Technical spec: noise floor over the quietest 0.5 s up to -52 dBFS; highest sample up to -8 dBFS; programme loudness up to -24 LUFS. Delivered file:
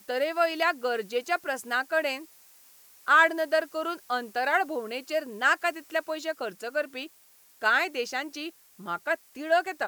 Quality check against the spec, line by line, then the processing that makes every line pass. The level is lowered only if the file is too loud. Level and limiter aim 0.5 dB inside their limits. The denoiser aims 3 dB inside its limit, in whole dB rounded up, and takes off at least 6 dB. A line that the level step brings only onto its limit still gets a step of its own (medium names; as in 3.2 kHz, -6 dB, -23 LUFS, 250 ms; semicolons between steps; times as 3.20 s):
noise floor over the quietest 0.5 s -58 dBFS: pass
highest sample -9.0 dBFS: pass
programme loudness -27.5 LUFS: pass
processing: none needed